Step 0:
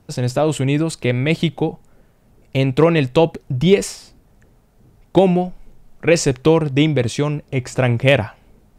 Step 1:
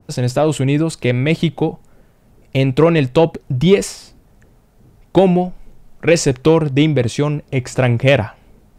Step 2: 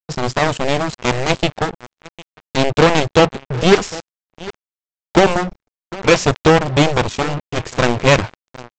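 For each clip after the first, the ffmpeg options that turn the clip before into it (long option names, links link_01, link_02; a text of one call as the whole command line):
ffmpeg -i in.wav -filter_complex "[0:a]asplit=2[link_01][link_02];[link_02]acontrast=40,volume=-2.5dB[link_03];[link_01][link_03]amix=inputs=2:normalize=0,adynamicequalizer=threshold=0.0708:dfrequency=1700:dqfactor=0.7:tfrequency=1700:tqfactor=0.7:attack=5:release=100:ratio=0.375:range=2:mode=cutabove:tftype=highshelf,volume=-5dB" out.wav
ffmpeg -i in.wav -filter_complex "[0:a]aeval=exprs='0.891*(cos(1*acos(clip(val(0)/0.891,-1,1)))-cos(1*PI/2))+0.282*(cos(7*acos(clip(val(0)/0.891,-1,1)))-cos(7*PI/2))':channel_layout=same,asplit=2[link_01][link_02];[link_02]adelay=754,lowpass=frequency=4000:poles=1,volume=-19.5dB,asplit=2[link_03][link_04];[link_04]adelay=754,lowpass=frequency=4000:poles=1,volume=0.32,asplit=2[link_05][link_06];[link_06]adelay=754,lowpass=frequency=4000:poles=1,volume=0.32[link_07];[link_01][link_03][link_05][link_07]amix=inputs=4:normalize=0,aresample=16000,acrusher=bits=3:mix=0:aa=0.5,aresample=44100,volume=-1dB" out.wav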